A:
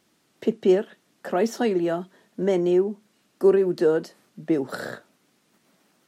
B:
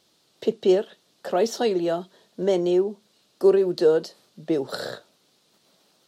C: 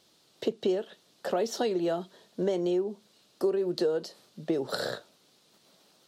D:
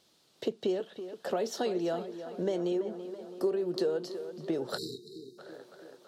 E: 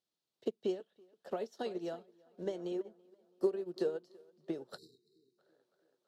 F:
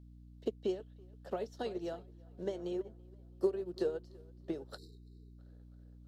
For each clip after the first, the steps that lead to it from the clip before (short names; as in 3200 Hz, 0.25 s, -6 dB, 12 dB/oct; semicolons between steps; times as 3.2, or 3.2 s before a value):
graphic EQ 250/500/2000/4000 Hz -6/+4/-6/+10 dB
compressor 5:1, threshold -25 dBFS, peak gain reduction 12 dB
tape echo 0.331 s, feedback 71%, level -10 dB, low-pass 3100 Hz; spectral delete 4.78–5.38, 470–3700 Hz; gain -3 dB
upward expander 2.5:1, over -41 dBFS
hum 60 Hz, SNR 14 dB